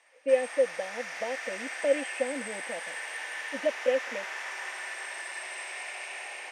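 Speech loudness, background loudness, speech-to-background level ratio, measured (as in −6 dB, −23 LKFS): −31.0 LKFS, −36.5 LKFS, 5.5 dB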